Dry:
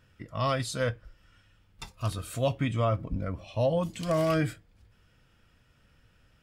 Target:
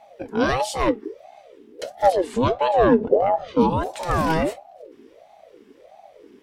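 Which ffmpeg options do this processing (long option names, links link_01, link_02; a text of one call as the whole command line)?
ffmpeg -i in.wav -filter_complex "[0:a]asettb=1/sr,asplit=3[link_01][link_02][link_03];[link_01]atrim=end=2.124[link_04];[link_02]atrim=start=2.12:end=3.61,asetpts=PTS-STARTPTS,afade=type=in:duration=0.004:curve=qsin,afade=type=out:start_time=1.486:duration=0.004:curve=qsin,lowpass=6300[link_05];[link_03]atrim=start=3.606[link_06];[link_04][link_05]acrossfade=duration=0.004:curve1=hsin:curve2=qsin[link_07];[link_07][link_06]acrossfade=duration=0.004:curve1=qsin:curve2=hsin,lowshelf=frequency=130:width_type=q:width=1.5:gain=9.5,aeval=exprs='val(0)*sin(2*PI*530*n/s+530*0.4/1.5*sin(2*PI*1.5*n/s))':channel_layout=same,volume=8dB" out.wav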